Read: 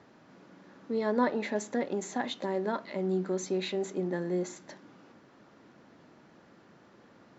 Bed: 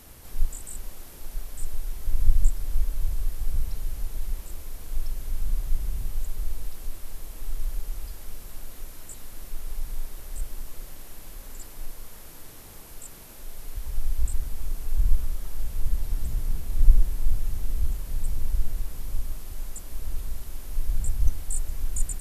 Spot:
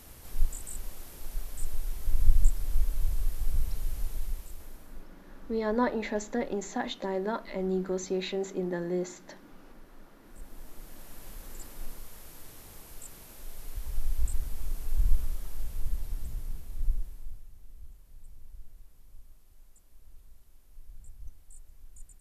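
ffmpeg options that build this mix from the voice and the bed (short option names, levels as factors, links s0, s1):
-filter_complex "[0:a]adelay=4600,volume=1[s0];[1:a]volume=7.5,afade=t=out:st=4.07:d=0.99:silence=0.0891251,afade=t=in:st=10.22:d=1.06:silence=0.105925,afade=t=out:st=15.19:d=2.28:silence=0.112202[s1];[s0][s1]amix=inputs=2:normalize=0"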